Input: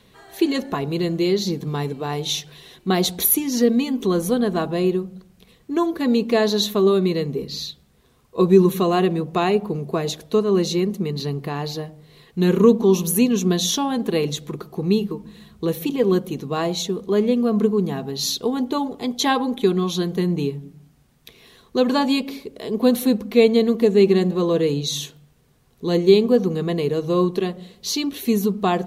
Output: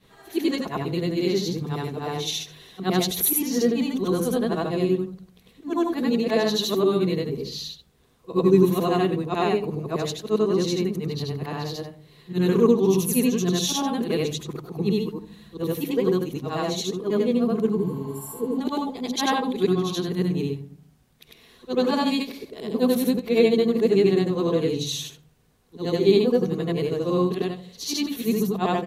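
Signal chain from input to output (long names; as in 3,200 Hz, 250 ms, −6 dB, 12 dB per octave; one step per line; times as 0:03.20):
every overlapping window played backwards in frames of 200 ms
healed spectral selection 0:17.82–0:18.56, 520–7,200 Hz before
pitch-shifted copies added −5 semitones −17 dB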